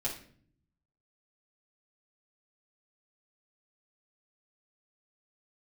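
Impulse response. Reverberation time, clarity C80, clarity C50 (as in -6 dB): 0.50 s, 12.5 dB, 7.5 dB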